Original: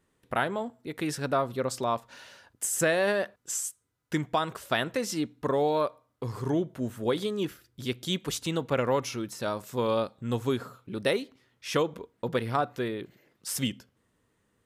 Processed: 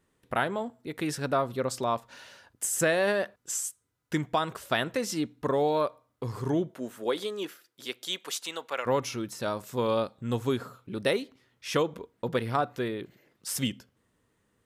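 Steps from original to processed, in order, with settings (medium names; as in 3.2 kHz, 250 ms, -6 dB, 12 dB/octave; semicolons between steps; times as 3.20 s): 6.70–8.85 s: high-pass 280 Hz -> 830 Hz 12 dB/octave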